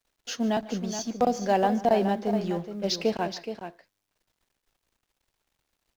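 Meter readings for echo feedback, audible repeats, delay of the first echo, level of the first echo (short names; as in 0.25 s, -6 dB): no steady repeat, 2, 0.149 s, -19.0 dB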